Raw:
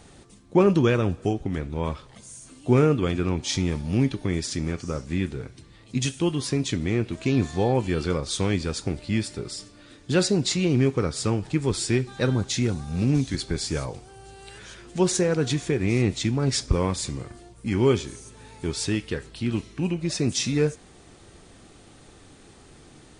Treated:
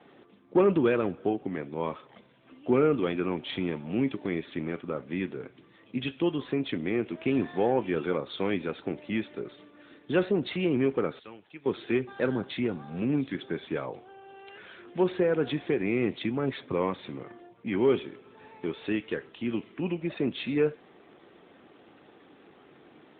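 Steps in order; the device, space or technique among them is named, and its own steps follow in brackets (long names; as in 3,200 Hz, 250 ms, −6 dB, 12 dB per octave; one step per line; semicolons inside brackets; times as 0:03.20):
0:11.19–0:11.66: first-order pre-emphasis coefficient 0.9
telephone (band-pass filter 260–3,400 Hz; soft clipping −12.5 dBFS, distortion −21 dB; AMR narrowband 12.2 kbit/s 8,000 Hz)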